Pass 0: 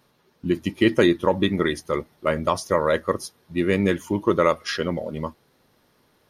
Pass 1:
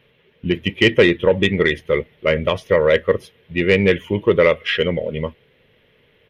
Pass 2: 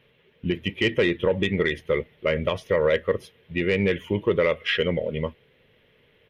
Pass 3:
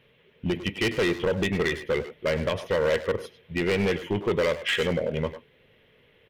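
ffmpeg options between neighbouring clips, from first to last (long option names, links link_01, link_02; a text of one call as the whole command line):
ffmpeg -i in.wav -af "firequalizer=gain_entry='entry(120,0);entry(310,-9);entry(450,4);entry(750,-10);entry(1300,-9);entry(2000,5);entry(3100,6);entry(4500,-18);entry(8000,-23);entry(14000,-15)':delay=0.05:min_phase=1,acontrast=86" out.wav
ffmpeg -i in.wav -af "alimiter=limit=-9dB:level=0:latency=1:release=105,volume=-3.5dB" out.wav
ffmpeg -i in.wav -filter_complex "[0:a]volume=20dB,asoftclip=hard,volume=-20dB,asplit=2[link_01][link_02];[link_02]adelay=100,highpass=300,lowpass=3400,asoftclip=type=hard:threshold=-28dB,volume=-7dB[link_03];[link_01][link_03]amix=inputs=2:normalize=0" out.wav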